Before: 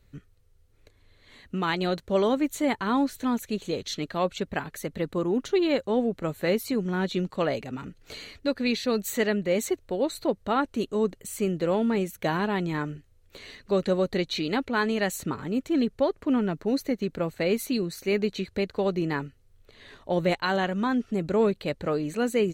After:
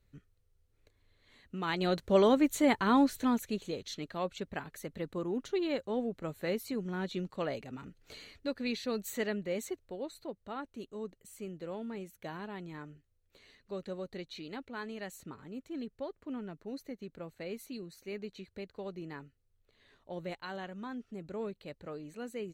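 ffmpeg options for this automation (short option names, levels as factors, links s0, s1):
-af "volume=0.891,afade=t=in:st=1.57:d=0.5:silence=0.354813,afade=t=out:st=3.08:d=0.7:silence=0.398107,afade=t=out:st=9.27:d=0.99:silence=0.446684"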